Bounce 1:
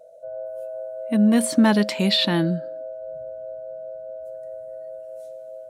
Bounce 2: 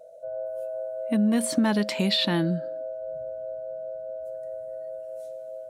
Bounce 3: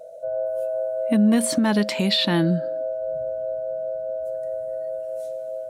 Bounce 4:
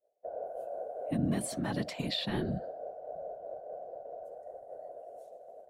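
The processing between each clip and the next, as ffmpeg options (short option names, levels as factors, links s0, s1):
-af "acompressor=threshold=0.0794:ratio=2.5"
-af "alimiter=limit=0.133:level=0:latency=1:release=437,volume=2.24"
-af "afftfilt=real='hypot(re,im)*cos(2*PI*random(0))':imag='hypot(re,im)*sin(2*PI*random(1))':win_size=512:overlap=0.75,agate=range=0.0224:threshold=0.0282:ratio=3:detection=peak,volume=0.422"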